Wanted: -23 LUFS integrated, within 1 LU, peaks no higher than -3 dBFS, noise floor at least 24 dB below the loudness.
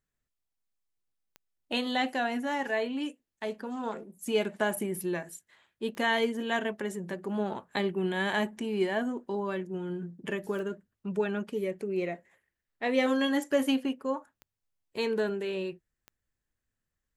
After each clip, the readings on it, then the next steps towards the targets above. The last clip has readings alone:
clicks 5; loudness -31.5 LUFS; peak -14.0 dBFS; loudness target -23.0 LUFS
-> de-click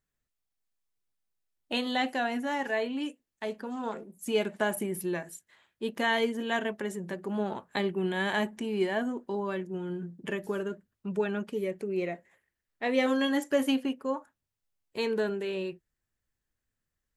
clicks 0; loudness -31.5 LUFS; peak -14.0 dBFS; loudness target -23.0 LUFS
-> gain +8.5 dB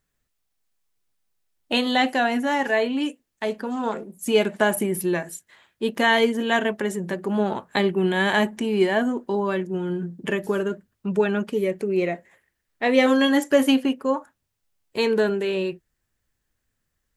loudness -23.0 LUFS; peak -5.5 dBFS; noise floor -78 dBFS

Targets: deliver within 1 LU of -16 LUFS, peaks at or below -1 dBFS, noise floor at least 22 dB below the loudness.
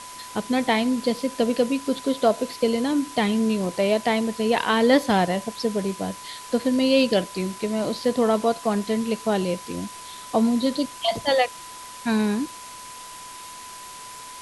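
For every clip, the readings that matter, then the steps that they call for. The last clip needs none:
steady tone 1000 Hz; tone level -40 dBFS; noise floor -40 dBFS; noise floor target -46 dBFS; loudness -23.5 LUFS; peak -6.0 dBFS; loudness target -16.0 LUFS
-> notch 1000 Hz, Q 30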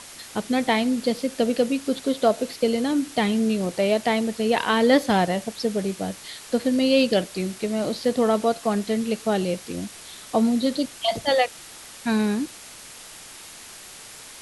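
steady tone none; noise floor -43 dBFS; noise floor target -46 dBFS
-> noise print and reduce 6 dB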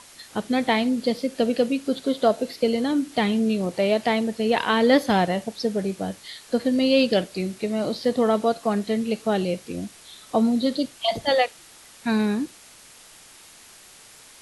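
noise floor -49 dBFS; loudness -23.5 LUFS; peak -6.0 dBFS; loudness target -16.0 LUFS
-> gain +7.5 dB; limiter -1 dBFS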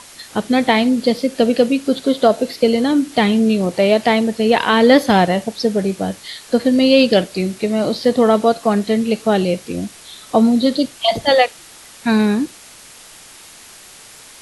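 loudness -16.0 LUFS; peak -1.0 dBFS; noise floor -41 dBFS

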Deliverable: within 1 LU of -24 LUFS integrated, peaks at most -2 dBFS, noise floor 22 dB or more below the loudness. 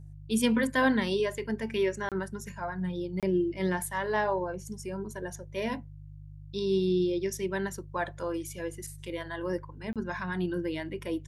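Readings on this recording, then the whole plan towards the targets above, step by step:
dropouts 3; longest dropout 27 ms; hum 50 Hz; harmonics up to 150 Hz; hum level -44 dBFS; loudness -31.5 LUFS; peak -14.0 dBFS; loudness target -24.0 LUFS
-> interpolate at 2.09/3.2/9.93, 27 ms; de-hum 50 Hz, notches 3; gain +7.5 dB

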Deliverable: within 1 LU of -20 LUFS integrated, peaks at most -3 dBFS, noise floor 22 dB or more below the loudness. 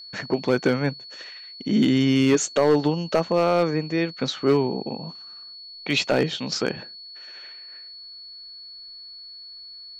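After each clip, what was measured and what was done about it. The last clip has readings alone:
clipped 0.4%; flat tops at -11.5 dBFS; steady tone 4400 Hz; tone level -39 dBFS; loudness -22.5 LUFS; peak -11.5 dBFS; loudness target -20.0 LUFS
-> clip repair -11.5 dBFS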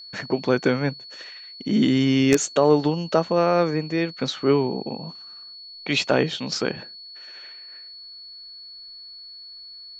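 clipped 0.0%; steady tone 4400 Hz; tone level -39 dBFS
-> notch 4400 Hz, Q 30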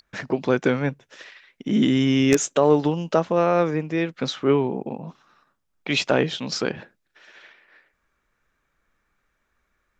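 steady tone none; loudness -22.0 LUFS; peak -2.5 dBFS; loudness target -20.0 LUFS
-> gain +2 dB; limiter -3 dBFS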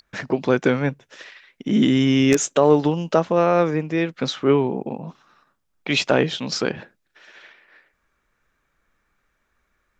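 loudness -20.0 LUFS; peak -3.0 dBFS; noise floor -72 dBFS

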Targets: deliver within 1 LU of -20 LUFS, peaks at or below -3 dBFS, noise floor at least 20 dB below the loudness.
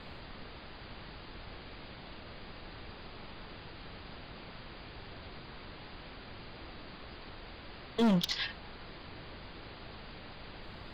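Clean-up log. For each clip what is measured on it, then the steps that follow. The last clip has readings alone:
clipped 0.6%; flat tops at -23.5 dBFS; noise floor -49 dBFS; noise floor target -61 dBFS; loudness -41.0 LUFS; peak -23.5 dBFS; loudness target -20.0 LUFS
-> clip repair -23.5 dBFS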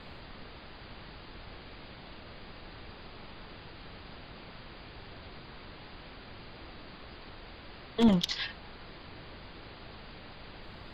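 clipped 0.0%; noise floor -49 dBFS; noise floor target -59 dBFS
-> noise print and reduce 10 dB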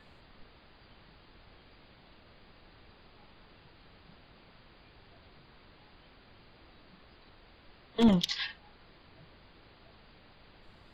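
noise floor -59 dBFS; loudness -29.0 LUFS; peak -14.5 dBFS; loudness target -20.0 LUFS
-> gain +9 dB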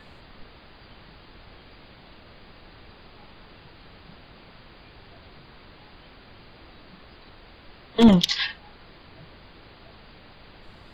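loudness -20.0 LUFS; peak -5.5 dBFS; noise floor -50 dBFS

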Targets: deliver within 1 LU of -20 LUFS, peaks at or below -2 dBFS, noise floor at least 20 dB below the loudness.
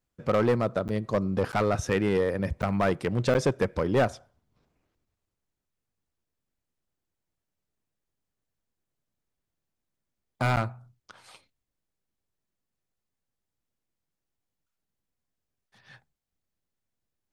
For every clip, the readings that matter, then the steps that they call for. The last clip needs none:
clipped 0.6%; flat tops at -17.5 dBFS; dropouts 5; longest dropout 9.1 ms; loudness -27.0 LUFS; peak -17.5 dBFS; loudness target -20.0 LUFS
-> clip repair -17.5 dBFS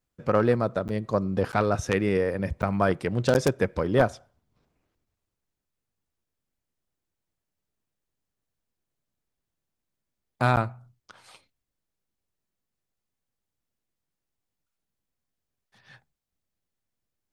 clipped 0.0%; dropouts 5; longest dropout 9.1 ms
-> interpolate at 0.88/1.52/2.62/3.34/10.56, 9.1 ms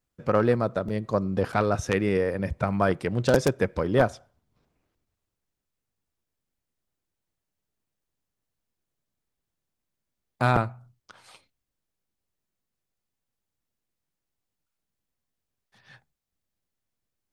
dropouts 0; loudness -25.5 LUFS; peak -3.5 dBFS; loudness target -20.0 LUFS
-> gain +5.5 dB; limiter -2 dBFS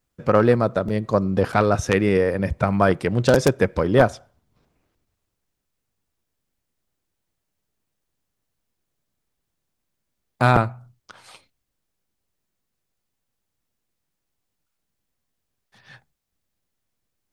loudness -20.0 LUFS; peak -2.0 dBFS; noise floor -79 dBFS

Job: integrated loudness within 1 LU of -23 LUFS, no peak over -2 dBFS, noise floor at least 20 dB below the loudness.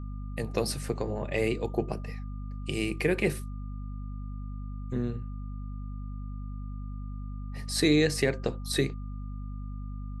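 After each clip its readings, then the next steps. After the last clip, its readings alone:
hum 50 Hz; harmonics up to 250 Hz; hum level -34 dBFS; steady tone 1200 Hz; tone level -55 dBFS; loudness -32.0 LUFS; peak -11.5 dBFS; loudness target -23.0 LUFS
-> de-hum 50 Hz, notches 5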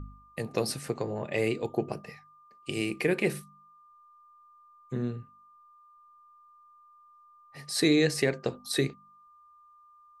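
hum none; steady tone 1200 Hz; tone level -55 dBFS
-> notch 1200 Hz, Q 30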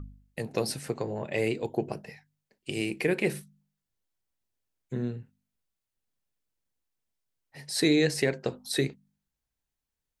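steady tone none; loudness -30.0 LUFS; peak -12.0 dBFS; loudness target -23.0 LUFS
-> gain +7 dB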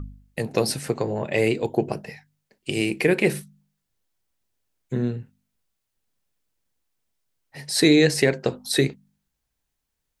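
loudness -23.0 LUFS; peak -5.0 dBFS; noise floor -80 dBFS

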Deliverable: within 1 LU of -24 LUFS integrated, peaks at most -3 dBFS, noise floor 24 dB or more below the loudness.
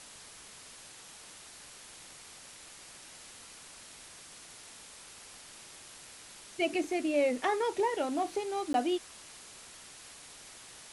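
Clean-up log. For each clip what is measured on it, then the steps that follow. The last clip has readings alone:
dropouts 1; longest dropout 12 ms; noise floor -52 dBFS; noise floor target -56 dBFS; loudness -31.5 LUFS; peak -17.5 dBFS; loudness target -24.0 LUFS
-> interpolate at 8.73, 12 ms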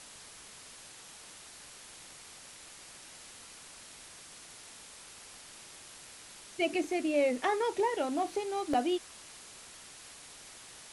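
dropouts 0; noise floor -52 dBFS; noise floor target -56 dBFS
-> denoiser 6 dB, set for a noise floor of -52 dBFS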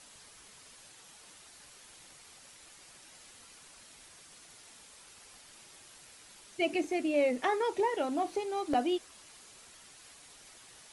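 noise floor -56 dBFS; loudness -31.5 LUFS; peak -17.0 dBFS; loudness target -24.0 LUFS
-> gain +7.5 dB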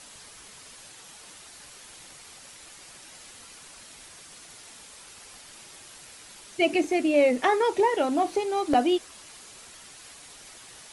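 loudness -24.0 LUFS; peak -9.5 dBFS; noise floor -48 dBFS

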